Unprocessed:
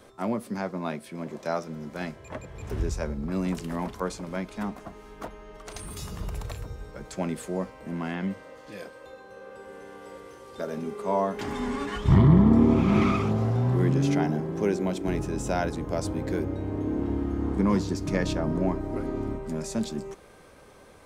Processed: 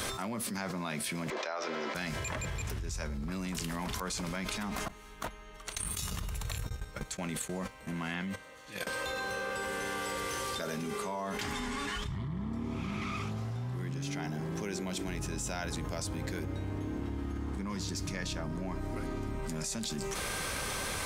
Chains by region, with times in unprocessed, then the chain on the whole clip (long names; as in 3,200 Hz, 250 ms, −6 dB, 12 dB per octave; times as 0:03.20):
0:01.30–0:01.95: high-pass filter 370 Hz 24 dB per octave + high-frequency loss of the air 210 metres
0:04.88–0:08.87: notch filter 5,000 Hz, Q 8 + noise gate −37 dBFS, range −23 dB
whole clip: guitar amp tone stack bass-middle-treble 5-5-5; envelope flattener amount 100%; level −6.5 dB